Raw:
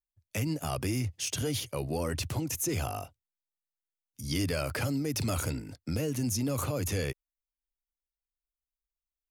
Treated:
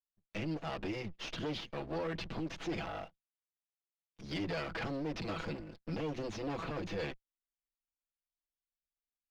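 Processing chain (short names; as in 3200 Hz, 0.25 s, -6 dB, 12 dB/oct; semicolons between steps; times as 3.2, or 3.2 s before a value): minimum comb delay 6.1 ms; LPF 4100 Hz 24 dB/oct; bell 130 Hz -12.5 dB 0.31 oct; sample leveller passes 1; gain -6 dB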